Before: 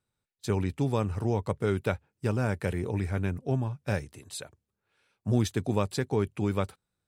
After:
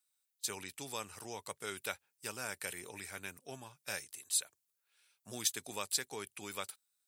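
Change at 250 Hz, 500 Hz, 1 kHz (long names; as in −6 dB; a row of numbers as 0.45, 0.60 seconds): −21.5, −16.0, −9.5 decibels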